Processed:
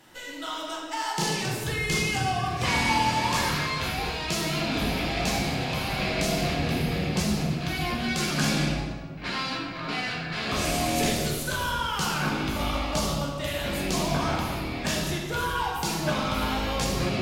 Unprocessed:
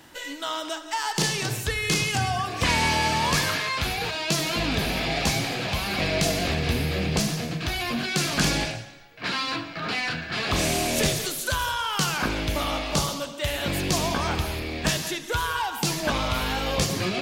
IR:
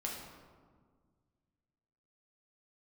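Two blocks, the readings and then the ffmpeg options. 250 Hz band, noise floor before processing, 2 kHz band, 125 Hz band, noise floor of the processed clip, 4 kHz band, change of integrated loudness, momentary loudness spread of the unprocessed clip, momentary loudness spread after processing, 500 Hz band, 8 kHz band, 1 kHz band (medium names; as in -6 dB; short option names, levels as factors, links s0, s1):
+0.5 dB, -39 dBFS, -2.5 dB, -0.5 dB, -36 dBFS, -3.0 dB, -2.0 dB, 6 LU, 6 LU, -1.5 dB, -4.0 dB, -0.5 dB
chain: -filter_complex "[1:a]atrim=start_sample=2205[s0];[0:a][s0]afir=irnorm=-1:irlink=0,volume=0.75" -ar 44100 -c:a libmp3lame -b:a 112k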